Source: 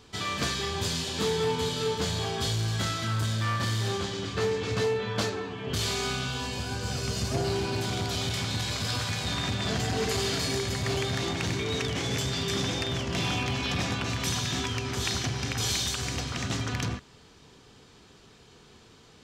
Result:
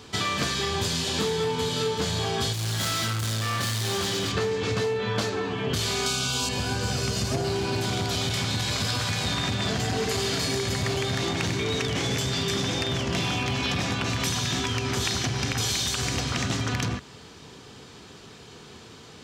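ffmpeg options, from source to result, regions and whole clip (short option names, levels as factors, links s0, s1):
-filter_complex "[0:a]asettb=1/sr,asplit=3[s0][s1][s2];[s0]atrim=end=2.534[s3];[s1]atrim=start=2.53:end=4.32,asetpts=PTS-STARTPTS,afade=t=in:d=0.004:c=qsin,afade=t=out:st=1.786:d=0.004:c=qsin,highshelf=f=2600:g=6,asoftclip=type=hard:threshold=0.0266[s4];[s2]atrim=start=4.316[s5];[s3][s4]acrossfade=d=0.004:c1=hsin:c2=qsin[s6];[s6][s5]acrossfade=d=0.004:c1=qsin:c2=hsin,asettb=1/sr,asplit=3[s7][s8][s9];[s7]atrim=end=6.064[s10];[s8]atrim=start=6.06:end=6.49,asetpts=PTS-STARTPTS,afade=t=in:d=0.004:c=qsin,afade=t=out:st=0.426:d=0.004:c=qsin,asuperstop=centerf=1900:order=20:qfactor=4.4,bass=f=250:g=-1,treble=f=4000:g=11[s11];[s9]atrim=start=6.486[s12];[s10][s11]acrossfade=d=0.004:c1=hsin:c2=qsin[s13];[s13][s12]acrossfade=d=0.004:c1=qsin:c2=hsin,highpass=70,acompressor=threshold=0.0251:ratio=6,volume=2.66"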